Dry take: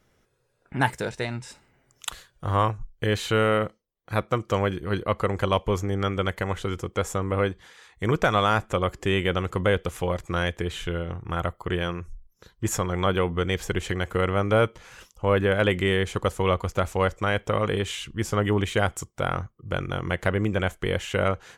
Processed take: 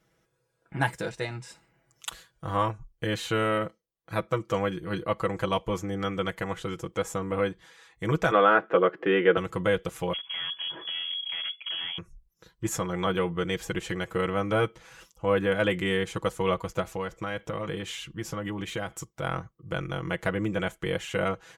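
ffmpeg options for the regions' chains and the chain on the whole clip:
-filter_complex "[0:a]asettb=1/sr,asplit=3[a][b][c];[a]atrim=end=8.314[d];[b]atrim=start=8.31:end=9.37,asetpts=PTS-STARTPTS,afade=t=in:d=0.004:c=qsin,afade=t=out:st=1.056:d=0.004:c=qsin,acontrast=59,highpass=f=220:w=0.5412,highpass=f=220:w=1.3066,equalizer=f=230:t=q:w=4:g=-4,equalizer=f=440:t=q:w=4:g=6,equalizer=f=940:t=q:w=4:g=-5,equalizer=f=1.5k:t=q:w=4:g=4,equalizer=f=2.3k:t=q:w=4:g=-5,lowpass=f=2.6k:w=0.5412,lowpass=f=2.6k:w=1.3066[e];[c]atrim=start=9.366[f];[d][e]acrossfade=d=0.004:c1=hsin:c2=qsin[g];[g][f]acrossfade=d=0.004:c1=qsin:c2=hsin,asettb=1/sr,asplit=3[h][i][j];[h]atrim=end=10.134[k];[i]atrim=start=10.13:end=11.98,asetpts=PTS-STARTPTS,afade=t=in:d=0.004:c=qsin,afade=t=out:st=1.846:d=0.004:c=qsin,lowshelf=f=190:g=8.5,asoftclip=type=hard:threshold=-28.5dB,lowpass=f=2.9k:t=q:w=0.5098,lowpass=f=2.9k:t=q:w=0.6013,lowpass=f=2.9k:t=q:w=0.9,lowpass=f=2.9k:t=q:w=2.563,afreqshift=-3400[l];[j]atrim=start=11.976[m];[k][l]acrossfade=d=0.004:c1=hsin:c2=qsin[n];[n][m]acrossfade=d=0.004:c1=qsin:c2=hsin,asettb=1/sr,asplit=3[o][p][q];[o]atrim=end=16.814[r];[p]atrim=start=16.81:end=19.23,asetpts=PTS-STARTPTS,afade=t=in:d=0.004:c=qsin,afade=t=out:st=2.416:d=0.004:c=qsin,acompressor=threshold=-24dB:ratio=4:attack=3.2:release=140:knee=1:detection=peak,equalizer=f=8.6k:w=2.3:g=-3.5[s];[q]atrim=start=19.226[t];[r][s]acrossfade=d=0.004:c1=hsin:c2=qsin[u];[u][t]acrossfade=d=0.004:c1=qsin:c2=hsin,highpass=41,aecho=1:1:6.1:0.69,volume=-5dB"

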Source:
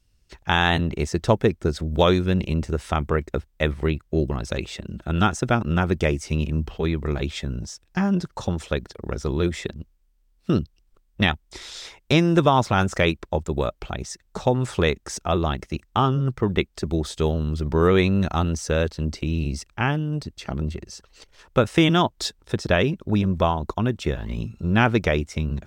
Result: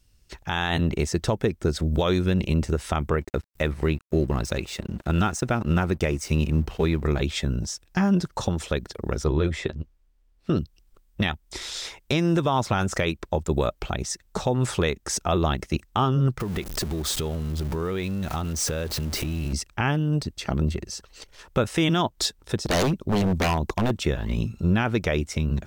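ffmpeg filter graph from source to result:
-filter_complex "[0:a]asettb=1/sr,asplit=3[a][b][c];[a]atrim=end=3.204[d];[b]atrim=start=3.2:end=7.06,asetpts=PTS-STARTPTS,afade=t=in:d=0.004:c=qsin,afade=t=out:st=3.856:d=0.004:c=qsin,bandreject=f=3.3k:w=12,acompressor=mode=upward:threshold=-33dB:ratio=2.5:attack=3.2:release=140:knee=2.83:detection=peak,aeval=exprs='sgn(val(0))*max(abs(val(0))-0.00376,0)':c=same[e];[c]atrim=start=7.056[f];[d][e]acrossfade=d=0.004:c1=hsin:c2=qsin[g];[g][f]acrossfade=d=0.004:c1=qsin:c2=hsin,asettb=1/sr,asplit=3[h][i][j];[h]atrim=end=9.244[k];[i]atrim=start=9.24:end=10.57,asetpts=PTS-STARTPTS,afade=t=in:d=0.004:c=qsin,afade=t=out:st=1.326:d=0.004:c=qsin,lowpass=f=2.7k:p=1,equalizer=f=200:w=5:g=-8.5,asplit=2[l][m];[m]adelay=13,volume=-10.5dB[n];[l][n]amix=inputs=2:normalize=0,atrim=end_sample=58653[o];[j]atrim=start=10.566[p];[k][o]acrossfade=d=0.004:c1=hsin:c2=qsin[q];[q][p]acrossfade=d=0.004:c1=qsin:c2=hsin,asettb=1/sr,asplit=3[r][s][t];[r]atrim=end=16.404[u];[s]atrim=start=16.4:end=19.53,asetpts=PTS-STARTPTS,afade=t=in:d=0.004:c=qsin,afade=t=out:st=3.126:d=0.004:c=qsin,aeval=exprs='val(0)+0.5*0.0299*sgn(val(0))':c=same,acompressor=threshold=-27dB:ratio=10:attack=3.2:release=140:knee=1:detection=peak[v];[t]atrim=start=19.526[w];[u][v]acrossfade=d=0.004:c1=hsin:c2=qsin[x];[x][w]acrossfade=d=0.004:c1=qsin:c2=hsin,asettb=1/sr,asplit=3[y][z][aa];[y]atrim=end=22.574[ab];[z]atrim=start=22.57:end=23.91,asetpts=PTS-STARTPTS,afade=t=in:d=0.004:c=qsin,afade=t=out:st=1.336:d=0.004:c=qsin,equalizer=f=1.7k:w=1.3:g=-6,aeval=exprs='0.106*(abs(mod(val(0)/0.106+3,4)-2)-1)':c=same[ac];[aa]atrim=start=23.906[ad];[ab][ac]acrossfade=d=0.004:c1=hsin:c2=qsin[ae];[ae][ad]acrossfade=d=0.004:c1=qsin:c2=hsin,highshelf=f=7.7k:g=5.5,alimiter=limit=-15.5dB:level=0:latency=1:release=205,volume=3dB"

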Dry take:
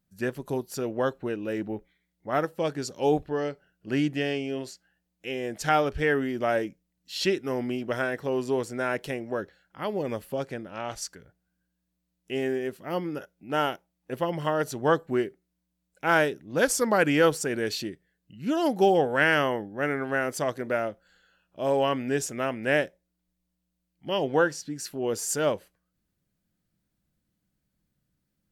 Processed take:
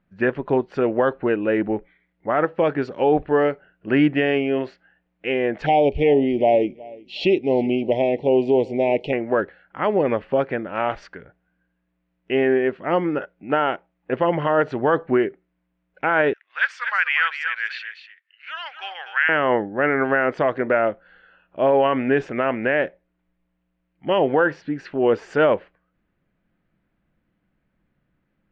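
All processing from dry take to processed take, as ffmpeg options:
-filter_complex "[0:a]asettb=1/sr,asplit=3[a][b][c];[a]atrim=end=5.664[d];[b]atrim=start=5.66:end=9.13,asetpts=PTS-STARTPTS,afade=t=in:d=0.004:c=qsin,afade=t=out:st=3.466:d=0.004:c=qsin,asuperstop=centerf=1400:order=8:qfactor=0.95,highshelf=f=7.1k:g=11.5,aecho=1:1:366|732:0.0668|0.0127,atrim=end_sample=153027[e];[c]atrim=start=9.126[f];[d][e]acrossfade=d=0.004:c1=hsin:c2=qsin[g];[g][f]acrossfade=d=0.004:c1=qsin:c2=hsin,asettb=1/sr,asplit=3[h][i][j];[h]atrim=end=16.334[k];[i]atrim=start=16.33:end=19.29,asetpts=PTS-STARTPTS,afade=t=in:d=0.004:c=qsin,afade=t=out:st=2.956:d=0.004:c=qsin,highpass=f=1.5k:w=0.5412,highpass=f=1.5k:w=1.3066,aecho=1:1:244:0.335,atrim=end_sample=130536[l];[j]atrim=start=19.286[m];[k][l]acrossfade=d=0.004:c1=hsin:c2=qsin[n];[n][m]acrossfade=d=0.004:c1=qsin:c2=hsin,lowpass=f=2.5k:w=0.5412,lowpass=f=2.5k:w=1.3066,equalizer=f=88:t=o:w=2.9:g=-8,alimiter=level_in=20dB:limit=-1dB:release=50:level=0:latency=1,volume=-7.5dB"

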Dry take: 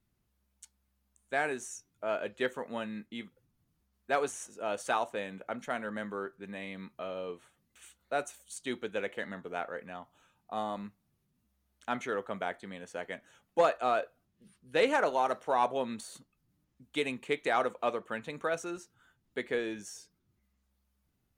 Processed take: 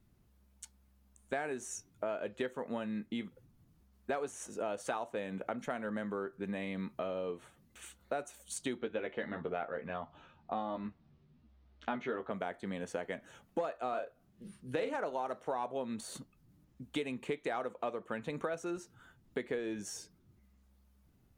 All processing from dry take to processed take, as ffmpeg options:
-filter_complex "[0:a]asettb=1/sr,asplit=3[a][b][c];[a]atrim=end=8.784[d];[b]atrim=start=8.78:end=12.32,asetpts=PTS-STARTPTS,afade=t=in:d=0.004:c=qsin,afade=t=out:st=3.536:d=0.004:c=qsin,lowpass=f=4.6k:w=0.5412,lowpass=f=4.6k:w=1.3066,asplit=2[e][f];[f]adelay=13,volume=-3.5dB[g];[e][g]amix=inputs=2:normalize=0,atrim=end_sample=156114[h];[c]atrim=start=12.316[i];[d][h]acrossfade=d=0.004:c1=hsin:c2=qsin[j];[j][i]acrossfade=d=0.004:c1=qsin:c2=hsin,asettb=1/sr,asplit=3[k][l][m];[k]atrim=end=13.894[n];[l]atrim=start=13.89:end=14.95,asetpts=PTS-STARTPTS,afade=t=in:d=0.004:c=qsin,afade=t=out:st=1.056:d=0.004:c=qsin,bandreject=f=50:t=h:w=6,bandreject=f=100:t=h:w=6,bandreject=f=150:t=h:w=6,asplit=2[o][p];[p]adelay=39,volume=-6dB[q];[o][q]amix=inputs=2:normalize=0,atrim=end_sample=46746[r];[m]atrim=start=14.946[s];[n][r]acrossfade=d=0.004:c1=hsin:c2=qsin[t];[t][s]acrossfade=d=0.004:c1=qsin:c2=hsin,tiltshelf=f=970:g=3.5,acompressor=threshold=-41dB:ratio=6,volume=6.5dB"

